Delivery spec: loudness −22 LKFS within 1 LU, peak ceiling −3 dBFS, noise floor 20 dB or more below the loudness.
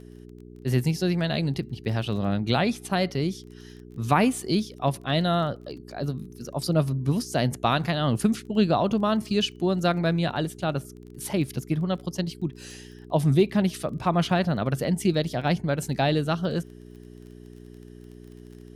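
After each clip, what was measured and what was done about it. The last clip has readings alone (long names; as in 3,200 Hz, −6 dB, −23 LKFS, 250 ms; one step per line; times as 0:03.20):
crackle rate 22 per second; mains hum 60 Hz; hum harmonics up to 420 Hz; level of the hum −44 dBFS; integrated loudness −26.0 LKFS; sample peak −8.5 dBFS; target loudness −22.0 LKFS
→ click removal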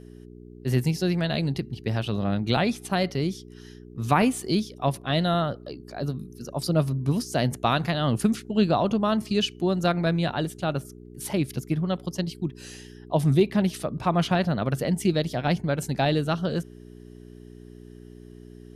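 crackle rate 0 per second; mains hum 60 Hz; hum harmonics up to 420 Hz; level of the hum −44 dBFS
→ hum removal 60 Hz, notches 7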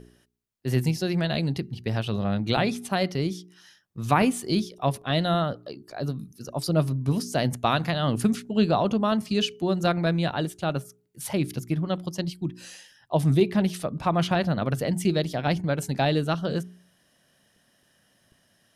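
mains hum none found; integrated loudness −26.0 LKFS; sample peak −8.5 dBFS; target loudness −22.0 LKFS
→ level +4 dB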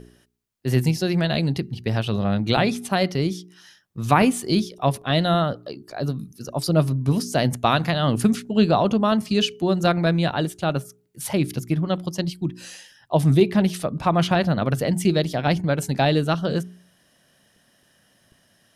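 integrated loudness −22.0 LKFS; sample peak −4.5 dBFS; background noise floor −62 dBFS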